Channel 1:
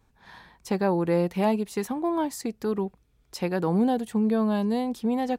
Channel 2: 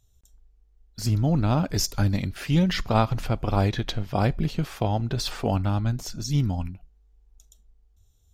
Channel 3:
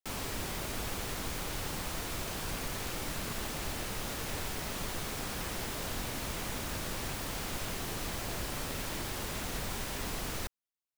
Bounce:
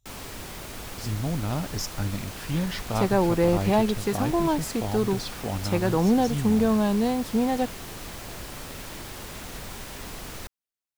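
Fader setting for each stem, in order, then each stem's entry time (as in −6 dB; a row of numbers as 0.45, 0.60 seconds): +2.0, −6.5, −1.0 decibels; 2.30, 0.00, 0.00 seconds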